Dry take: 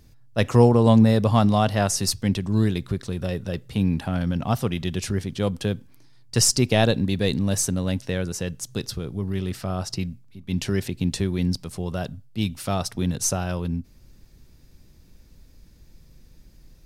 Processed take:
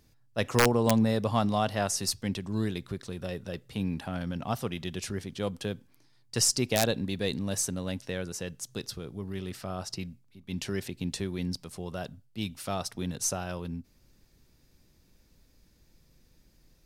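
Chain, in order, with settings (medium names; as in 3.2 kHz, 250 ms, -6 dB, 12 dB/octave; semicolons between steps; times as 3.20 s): bass shelf 180 Hz -8 dB; integer overflow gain 6 dB; trim -5.5 dB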